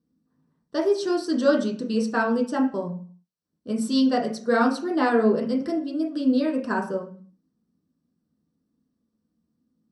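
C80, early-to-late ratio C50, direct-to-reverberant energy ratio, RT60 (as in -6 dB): 13.5 dB, 9.0 dB, -2.0 dB, 0.45 s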